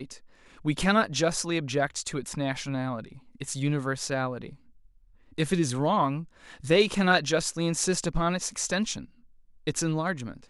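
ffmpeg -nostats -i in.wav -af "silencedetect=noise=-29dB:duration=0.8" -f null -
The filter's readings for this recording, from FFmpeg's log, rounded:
silence_start: 4.46
silence_end: 5.38 | silence_duration: 0.92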